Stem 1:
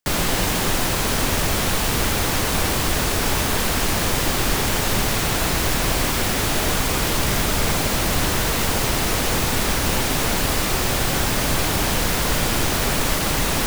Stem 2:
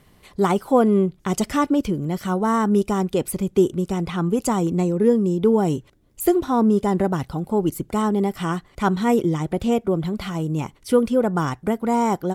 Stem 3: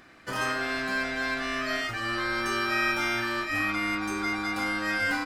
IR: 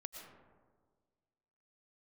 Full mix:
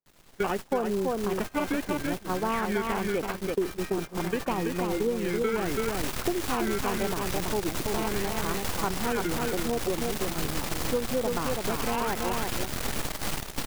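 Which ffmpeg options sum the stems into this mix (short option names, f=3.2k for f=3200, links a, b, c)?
-filter_complex "[0:a]aeval=exprs='max(val(0),0)':c=same,volume=-4dB,afade=t=in:st=5.43:d=0.62:silence=0.421697,asplit=2[a][b];[b]volume=-10.5dB[c];[1:a]acrusher=samples=14:mix=1:aa=0.000001:lfo=1:lforange=22.4:lforate=0.78,bass=f=250:g=-10,treble=f=4k:g=-7,afwtdn=0.0282,volume=-1.5dB,asplit=3[d][e][f];[e]volume=-4.5dB[g];[2:a]acrossover=split=890[h][i];[h]aeval=exprs='val(0)*(1-1/2+1/2*cos(2*PI*5.5*n/s))':c=same[j];[i]aeval=exprs='val(0)*(1-1/2-1/2*cos(2*PI*5.5*n/s))':c=same[k];[j][k]amix=inputs=2:normalize=0,adelay=1050,volume=-9dB[l];[f]apad=whole_len=277862[m];[l][m]sidechaingate=range=-33dB:threshold=-37dB:ratio=16:detection=peak[n];[c][g]amix=inputs=2:normalize=0,aecho=0:1:331:1[o];[a][d][n][o]amix=inputs=4:normalize=0,agate=range=-22dB:threshold=-26dB:ratio=16:detection=peak,acompressor=threshold=-25dB:ratio=4"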